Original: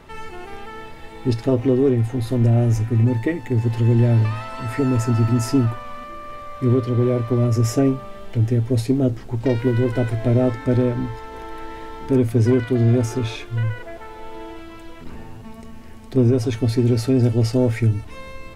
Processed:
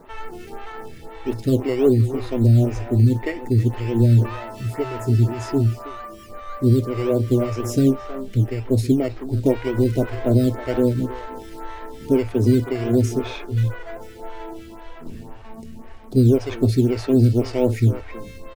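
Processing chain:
0:04.36–0:06.30: notch comb filter 260 Hz
far-end echo of a speakerphone 320 ms, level −10 dB
in parallel at −8.5 dB: sample-and-hold swept by an LFO 14×, swing 60% 1.9 Hz
on the sum: phaser with staggered stages 1.9 Hz

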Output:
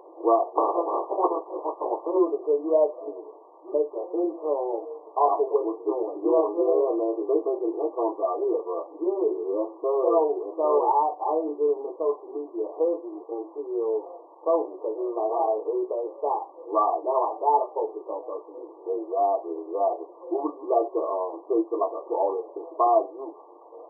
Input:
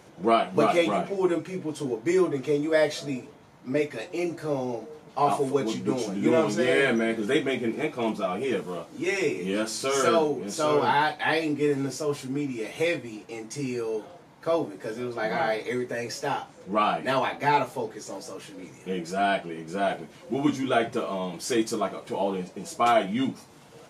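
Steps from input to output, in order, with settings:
0:00.55–0:02.17: ceiling on every frequency bin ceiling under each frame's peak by 23 dB
in parallel at +1 dB: downward compressor, threshold −32 dBFS, peak gain reduction 15 dB
on the sum: linear-phase brick-wall band-pass 310–1,200 Hz

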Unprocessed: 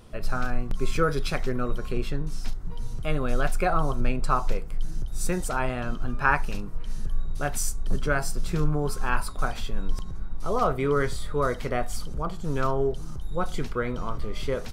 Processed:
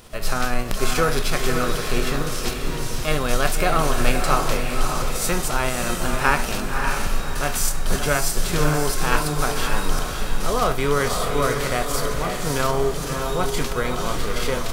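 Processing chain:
spectral envelope flattened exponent 0.6
feedback delay with all-pass diffusion 585 ms, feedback 40%, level −4 dB
level +2.5 dB

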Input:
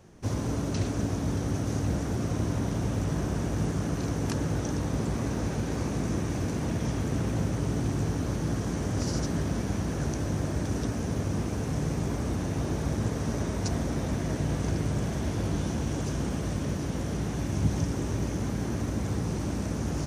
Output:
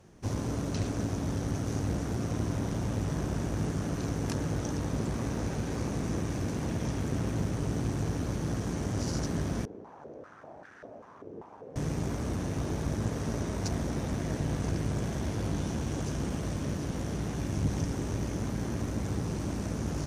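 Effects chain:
tube saturation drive 19 dB, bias 0.55
0:09.65–0:11.76: band-pass on a step sequencer 5.1 Hz 420–1,600 Hz

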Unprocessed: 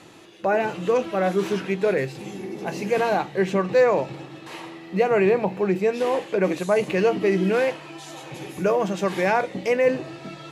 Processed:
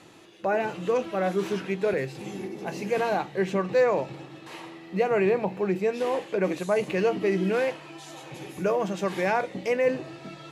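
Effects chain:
0:01.93–0:02.48: multiband upward and downward compressor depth 40%
level −4 dB

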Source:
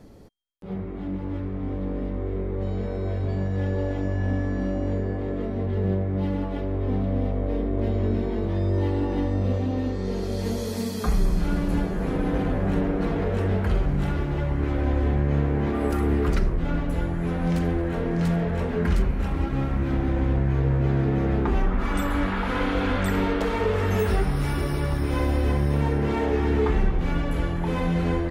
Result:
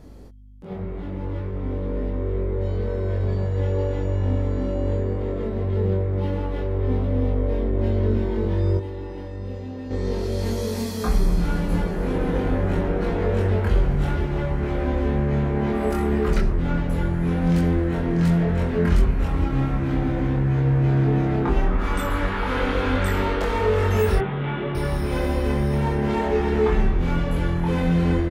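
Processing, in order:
0:08.77–0:09.91: tuned comb filter 200 Hz, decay 0.21 s, harmonics all, mix 80%
0:24.18–0:24.75: Chebyshev band-pass filter 110–3,500 Hz, order 5
mains hum 50 Hz, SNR 25 dB
double-tracking delay 23 ms −2 dB

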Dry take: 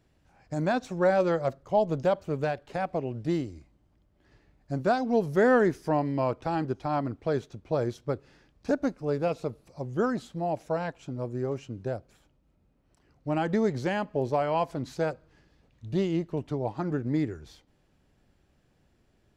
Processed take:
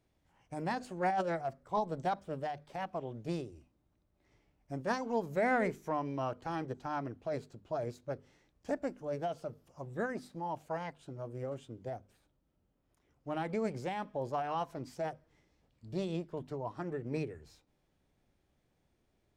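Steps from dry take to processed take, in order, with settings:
mains-hum notches 50/100/150/200/250 Hz
formants moved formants +3 semitones
level −8.5 dB

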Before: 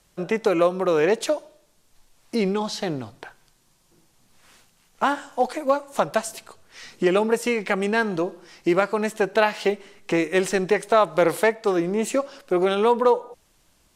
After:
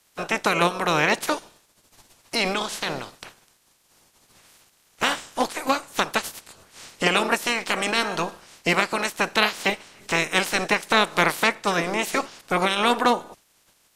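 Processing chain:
ceiling on every frequency bin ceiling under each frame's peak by 24 dB
level −1 dB

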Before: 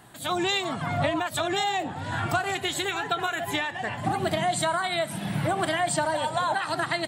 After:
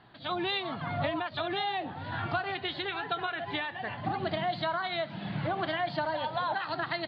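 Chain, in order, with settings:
Chebyshev low-pass filter 4,600 Hz, order 6
level −5 dB

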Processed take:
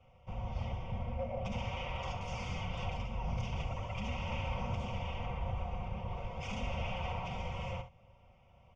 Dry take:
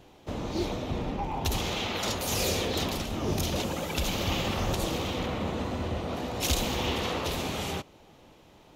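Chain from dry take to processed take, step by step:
high-pass filter 190 Hz 6 dB per octave
comb filter 5 ms, depth 73%
wave folding −23 dBFS
phaser with its sweep stopped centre 2,900 Hz, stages 8
frequency shifter −270 Hz
head-to-tape spacing loss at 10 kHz 36 dB
ambience of single reflections 41 ms −14.5 dB, 66 ms −12 dB
level −1 dB

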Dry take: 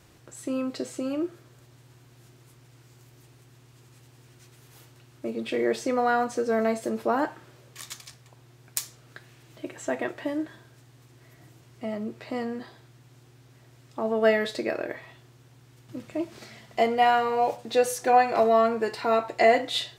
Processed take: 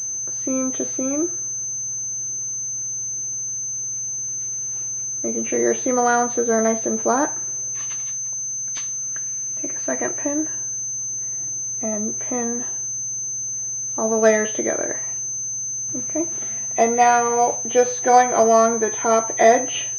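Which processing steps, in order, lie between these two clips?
hearing-aid frequency compression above 1,900 Hz 1.5 to 1
0:08.07–0:10.02: thirty-one-band graphic EQ 100 Hz −10 dB, 400 Hz −8 dB, 800 Hz −7 dB
switching amplifier with a slow clock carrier 6,200 Hz
level +5.5 dB

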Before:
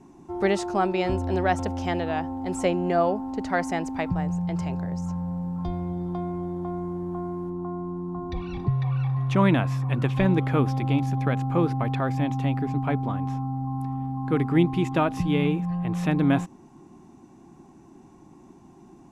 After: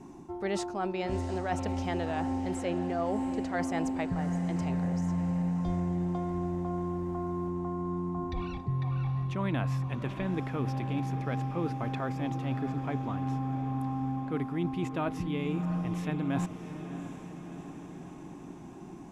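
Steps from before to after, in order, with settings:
reversed playback
downward compressor 6 to 1, threshold −32 dBFS, peak gain reduction 16.5 dB
reversed playback
feedback delay with all-pass diffusion 686 ms, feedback 63%, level −11 dB
level +2.5 dB

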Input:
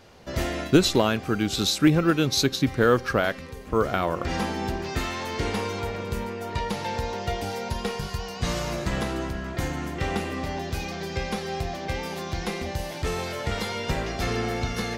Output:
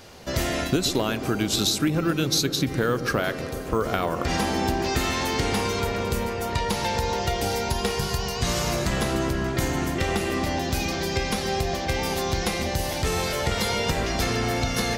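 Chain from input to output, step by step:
high-shelf EQ 4,600 Hz +8.5 dB
downward compressor 6 to 1, threshold −25 dBFS, peak gain reduction 12.5 dB
delay with a low-pass on its return 130 ms, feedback 82%, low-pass 900 Hz, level −10.5 dB
level +4.5 dB

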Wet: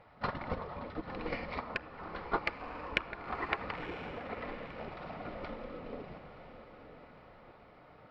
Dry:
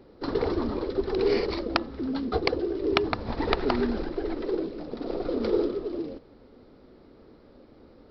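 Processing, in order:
0:01.58–0:03.58: octave-band graphic EQ 125/250/500/1,000/2,000/4,000 Hz −11/−8/−10/+12/−4/−6 dB
rectangular room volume 3,500 cubic metres, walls furnished, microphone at 0.96 metres
downward compressor 6 to 1, threshold −33 dBFS, peak gain reduction 16 dB
gate on every frequency bin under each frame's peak −10 dB weak
high shelf with overshoot 3,300 Hz −11 dB, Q 1.5
notch filter 1,600 Hz, Q 15
noise gate −41 dBFS, range −9 dB
feedback delay with all-pass diffusion 998 ms, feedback 44%, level −11 dB
level +11.5 dB

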